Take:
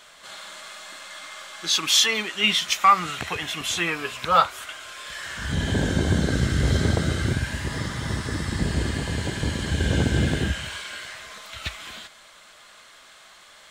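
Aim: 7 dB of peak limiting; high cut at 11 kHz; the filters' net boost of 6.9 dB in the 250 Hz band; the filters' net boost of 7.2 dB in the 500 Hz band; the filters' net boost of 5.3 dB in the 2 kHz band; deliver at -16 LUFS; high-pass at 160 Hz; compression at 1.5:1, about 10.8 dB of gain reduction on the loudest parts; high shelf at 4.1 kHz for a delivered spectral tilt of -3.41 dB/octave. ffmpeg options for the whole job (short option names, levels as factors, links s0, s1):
-af "highpass=160,lowpass=11000,equalizer=f=250:t=o:g=8.5,equalizer=f=500:t=o:g=6,equalizer=f=2000:t=o:g=5,highshelf=f=4100:g=5.5,acompressor=threshold=0.0112:ratio=1.5,volume=5.31,alimiter=limit=0.668:level=0:latency=1"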